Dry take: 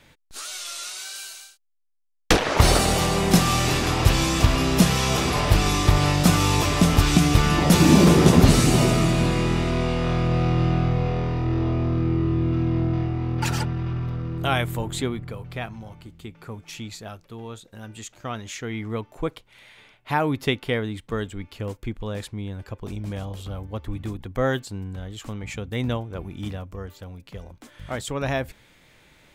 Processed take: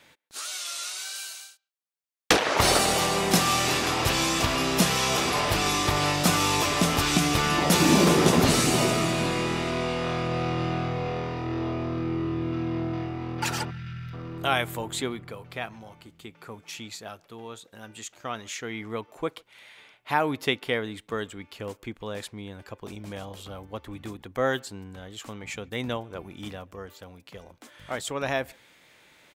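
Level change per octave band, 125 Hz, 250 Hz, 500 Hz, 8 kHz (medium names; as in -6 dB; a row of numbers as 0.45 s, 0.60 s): -9.5 dB, -5.5 dB, -2.0 dB, 0.0 dB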